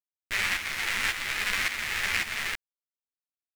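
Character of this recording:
tremolo saw up 1.8 Hz, depth 65%
a quantiser's noise floor 8 bits, dither none
a shimmering, thickened sound

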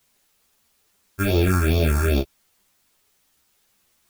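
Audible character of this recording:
aliases and images of a low sample rate 1,000 Hz, jitter 0%
phaser sweep stages 4, 2.4 Hz, lowest notch 520–1,600 Hz
a quantiser's noise floor 12 bits, dither triangular
a shimmering, thickened sound

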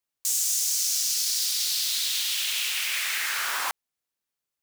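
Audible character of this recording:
background noise floor −87 dBFS
spectral slope +3.5 dB per octave

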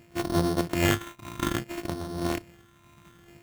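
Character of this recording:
a buzz of ramps at a fixed pitch in blocks of 128 samples
phaser sweep stages 8, 0.6 Hz, lowest notch 530–2,300 Hz
aliases and images of a low sample rate 4,900 Hz, jitter 0%
amplitude modulation by smooth noise

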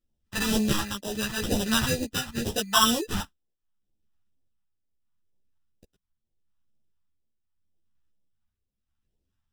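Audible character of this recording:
aliases and images of a low sample rate 2,200 Hz, jitter 0%
phaser sweep stages 2, 2.1 Hz, lowest notch 440–1,300 Hz
tremolo triangle 0.78 Hz, depth 70%
a shimmering, thickened sound

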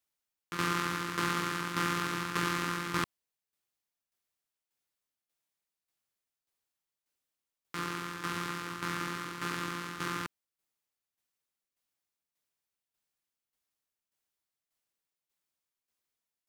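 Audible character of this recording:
tremolo saw down 1.7 Hz, depth 65%

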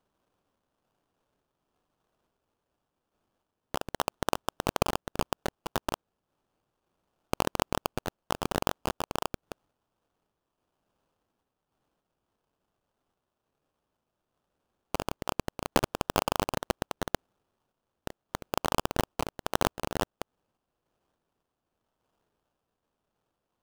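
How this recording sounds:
sample-and-hold tremolo 3.5 Hz
phaser sweep stages 4, 2.1 Hz, lowest notch 800–1,700 Hz
aliases and images of a low sample rate 2,100 Hz, jitter 20%

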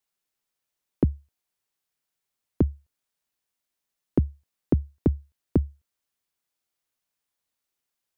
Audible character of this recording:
background noise floor −85 dBFS
spectral slope −10.5 dB per octave

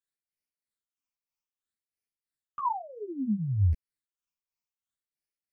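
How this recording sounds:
phaser sweep stages 8, 0.61 Hz, lowest notch 470–1,100 Hz
tremolo triangle 3.1 Hz, depth 80%
a shimmering, thickened sound

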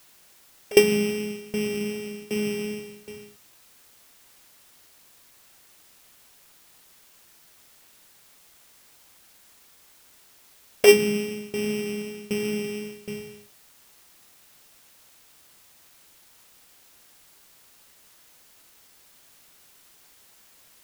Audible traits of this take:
a buzz of ramps at a fixed pitch in blocks of 16 samples
tremolo saw down 1.3 Hz, depth 95%
a quantiser's noise floor 10 bits, dither triangular

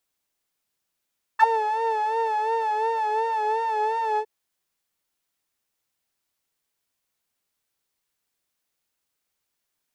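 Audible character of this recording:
background noise floor −80 dBFS
spectral slope −1.5 dB per octave

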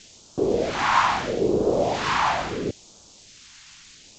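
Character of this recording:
a quantiser's noise floor 8 bits, dither triangular
phaser sweep stages 2, 0.75 Hz, lowest notch 440–1,900 Hz
G.722

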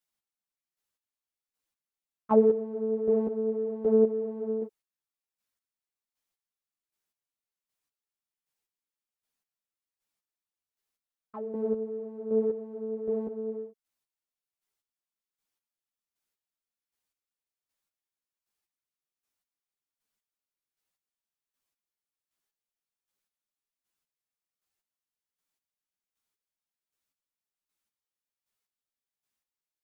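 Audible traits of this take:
chopped level 1.3 Hz, depth 65%, duty 25%
a shimmering, thickened sound

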